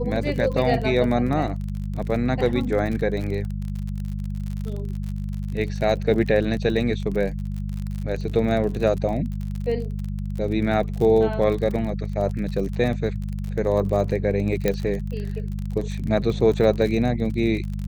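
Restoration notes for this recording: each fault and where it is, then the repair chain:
crackle 41/s -29 dBFS
hum 50 Hz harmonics 4 -28 dBFS
14.68 pop -8 dBFS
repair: de-click; de-hum 50 Hz, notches 4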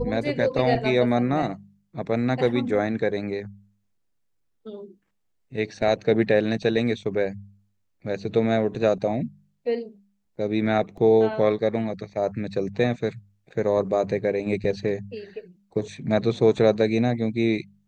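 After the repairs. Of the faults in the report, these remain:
none

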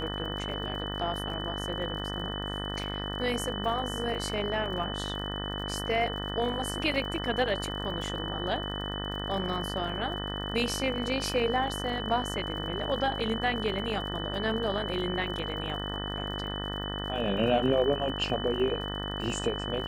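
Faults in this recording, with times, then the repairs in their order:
buzz 50 Hz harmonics 38 -36 dBFS
crackle 52/s -40 dBFS
tone 3000 Hz -37 dBFS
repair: de-click; notch 3000 Hz, Q 30; de-hum 50 Hz, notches 38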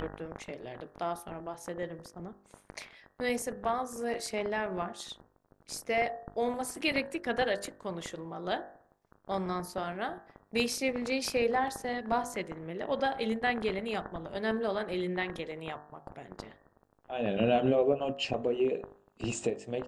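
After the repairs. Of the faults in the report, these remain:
none

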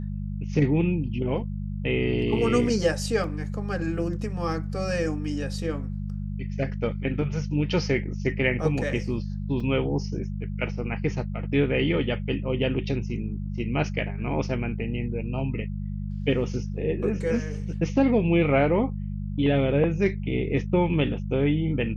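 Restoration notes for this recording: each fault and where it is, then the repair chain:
hum 50 Hz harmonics 4 -31 dBFS
3.24 gap 2 ms
9.6 gap 3.6 ms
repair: de-hum 50 Hz, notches 4; interpolate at 3.24, 2 ms; interpolate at 9.6, 3.6 ms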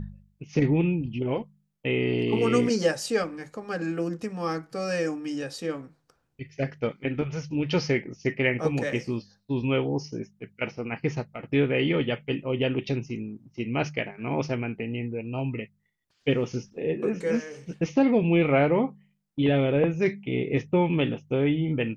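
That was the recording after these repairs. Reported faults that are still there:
none

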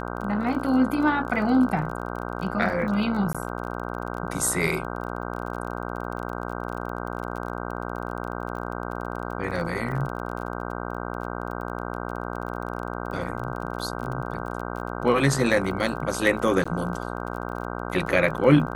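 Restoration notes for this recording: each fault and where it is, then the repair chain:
buzz 60 Hz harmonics 26 -32 dBFS
crackle 30/s -33 dBFS
3.33–3.35 gap 16 ms
16.64–16.66 gap 15 ms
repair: de-click; de-hum 60 Hz, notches 26; interpolate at 3.33, 16 ms; interpolate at 16.64, 15 ms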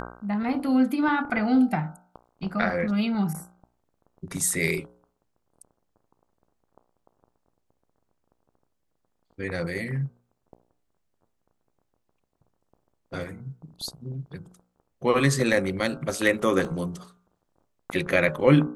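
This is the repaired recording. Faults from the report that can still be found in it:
none

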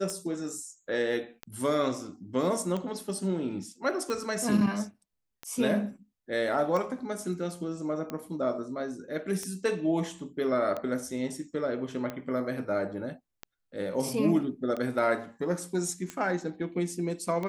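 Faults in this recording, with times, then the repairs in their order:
tick 45 rpm -21 dBFS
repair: de-click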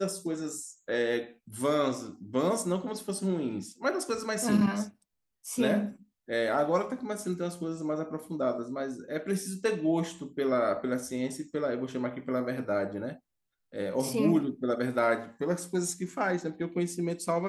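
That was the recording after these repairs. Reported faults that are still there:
none

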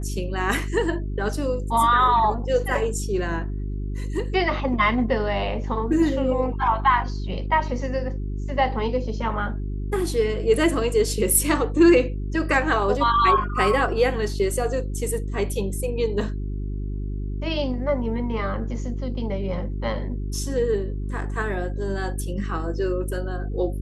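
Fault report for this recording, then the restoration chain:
hum 50 Hz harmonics 8 -28 dBFS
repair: de-hum 50 Hz, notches 8

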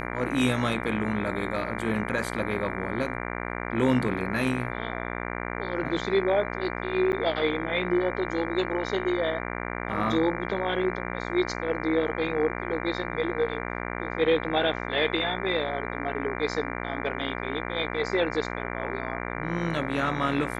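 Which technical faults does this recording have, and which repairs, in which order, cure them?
buzz 60 Hz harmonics 39 -33 dBFS
7.12–7.13 gap 9.7 ms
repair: de-hum 60 Hz, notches 39; interpolate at 7.12, 9.7 ms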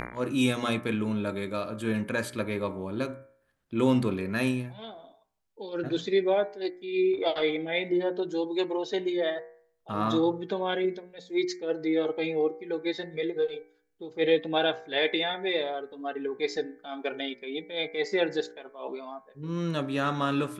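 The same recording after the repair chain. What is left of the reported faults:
none

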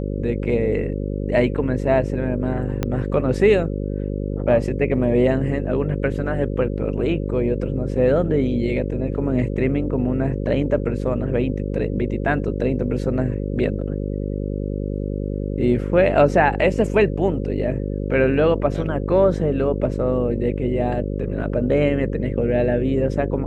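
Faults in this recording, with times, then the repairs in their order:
buzz 50 Hz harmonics 11 -25 dBFS
2.83 pop -8 dBFS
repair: de-click; de-hum 50 Hz, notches 11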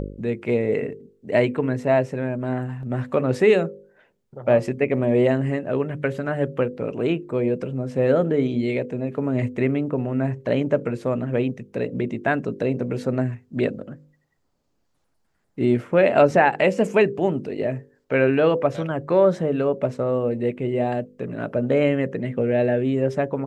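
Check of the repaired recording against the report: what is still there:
2.83 pop

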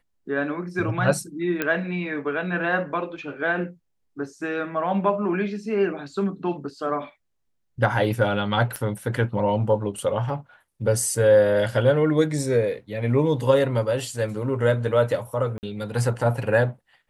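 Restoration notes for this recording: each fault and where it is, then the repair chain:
1.62 pop -10 dBFS
8.76 pop -16 dBFS
15.58–15.63 gap 49 ms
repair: de-click; interpolate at 15.58, 49 ms

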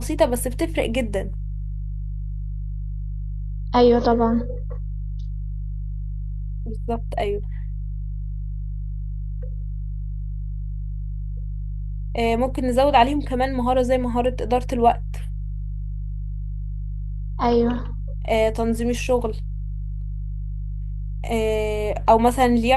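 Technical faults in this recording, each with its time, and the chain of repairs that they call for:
hum 50 Hz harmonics 3 -28 dBFS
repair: de-hum 50 Hz, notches 3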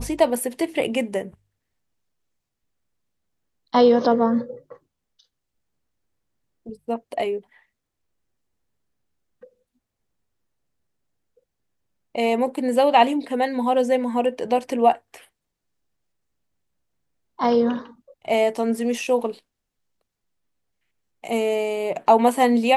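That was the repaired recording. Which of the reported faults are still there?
none

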